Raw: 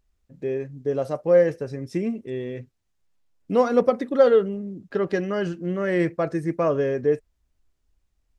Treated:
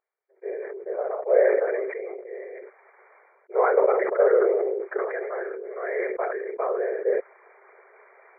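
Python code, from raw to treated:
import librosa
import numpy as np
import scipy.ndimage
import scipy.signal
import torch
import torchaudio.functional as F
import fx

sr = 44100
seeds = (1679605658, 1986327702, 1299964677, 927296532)

y = fx.whisperise(x, sr, seeds[0])
y = fx.brickwall_bandpass(y, sr, low_hz=370.0, high_hz=2400.0)
y = fx.sustainer(y, sr, db_per_s=27.0)
y = F.gain(torch.from_numpy(y), -4.0).numpy()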